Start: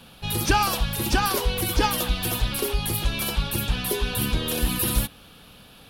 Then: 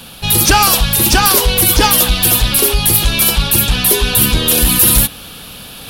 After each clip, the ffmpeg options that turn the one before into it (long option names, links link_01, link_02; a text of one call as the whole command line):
ffmpeg -i in.wav -af "highshelf=frequency=4200:gain=9.5,areverse,acompressor=mode=upward:threshold=-37dB:ratio=2.5,areverse,aeval=exprs='0.668*sin(PI/2*2.24*val(0)/0.668)':channel_layout=same" out.wav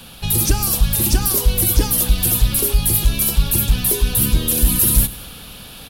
ffmpeg -i in.wav -filter_complex "[0:a]aecho=1:1:99|198|297|396|495:0.112|0.0617|0.0339|0.0187|0.0103,acrossover=split=410|5900[link_01][link_02][link_03];[link_02]acompressor=threshold=-24dB:ratio=6[link_04];[link_01][link_04][link_03]amix=inputs=3:normalize=0,lowshelf=frequency=89:gain=7,volume=-5.5dB" out.wav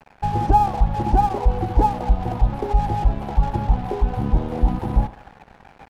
ffmpeg -i in.wav -af "crystalizer=i=0.5:c=0,lowpass=frequency=820:width_type=q:width=9.6,aeval=exprs='sgn(val(0))*max(abs(val(0))-0.0178,0)':channel_layout=same,volume=-1.5dB" out.wav